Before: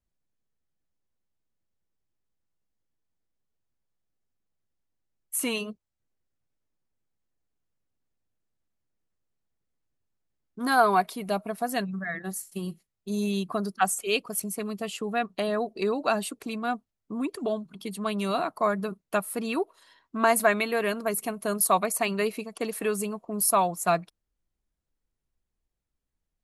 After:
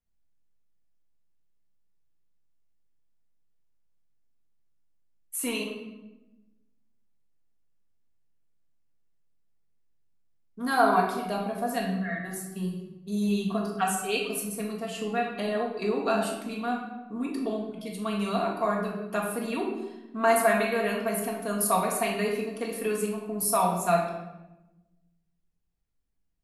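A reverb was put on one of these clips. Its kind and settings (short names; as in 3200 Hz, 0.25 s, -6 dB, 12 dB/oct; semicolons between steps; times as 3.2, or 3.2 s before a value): shoebox room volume 480 m³, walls mixed, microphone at 1.7 m; gain -5.5 dB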